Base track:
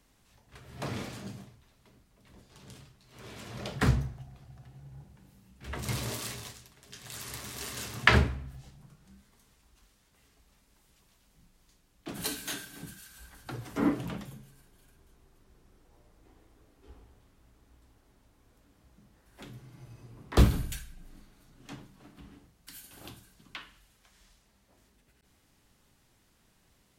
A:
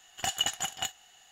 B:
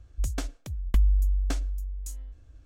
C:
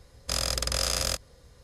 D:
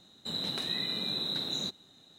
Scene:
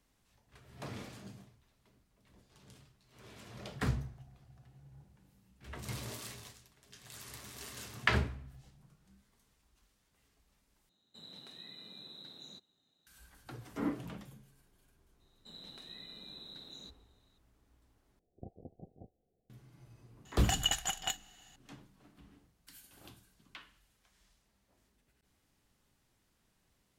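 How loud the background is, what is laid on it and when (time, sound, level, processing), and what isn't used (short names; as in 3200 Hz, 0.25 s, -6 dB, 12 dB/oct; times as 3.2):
base track -8 dB
10.89 replace with D -18 dB
15.2 add D -17 dB
18.19 replace with A -2 dB + steep low-pass 540 Hz 48 dB/oct
20.25 add A -2.5 dB
not used: B, C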